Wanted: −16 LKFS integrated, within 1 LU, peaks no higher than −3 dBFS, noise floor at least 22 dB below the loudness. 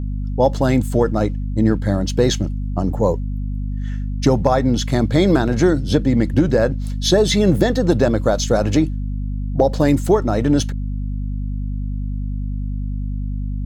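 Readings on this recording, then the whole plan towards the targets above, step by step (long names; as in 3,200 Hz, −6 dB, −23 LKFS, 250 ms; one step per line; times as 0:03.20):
mains hum 50 Hz; hum harmonics up to 250 Hz; level of the hum −21 dBFS; integrated loudness −19.0 LKFS; sample peak −1.5 dBFS; target loudness −16.0 LKFS
→ hum removal 50 Hz, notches 5
level +3 dB
brickwall limiter −3 dBFS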